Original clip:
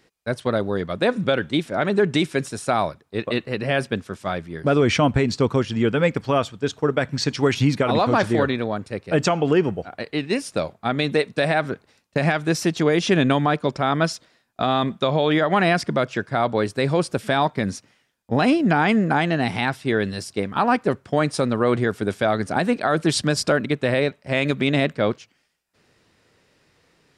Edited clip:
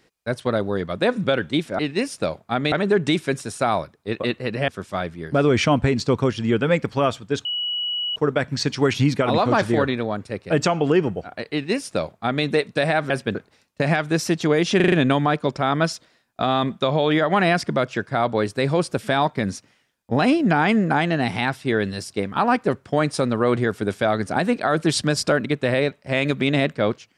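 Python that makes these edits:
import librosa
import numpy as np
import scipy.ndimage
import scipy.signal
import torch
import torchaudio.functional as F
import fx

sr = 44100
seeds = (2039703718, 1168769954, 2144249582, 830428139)

y = fx.edit(x, sr, fx.move(start_s=3.75, length_s=0.25, to_s=11.71),
    fx.insert_tone(at_s=6.77, length_s=0.71, hz=2930.0, db=-22.5),
    fx.duplicate(start_s=10.13, length_s=0.93, to_s=1.79),
    fx.stutter(start_s=13.12, slice_s=0.04, count=5), tone=tone)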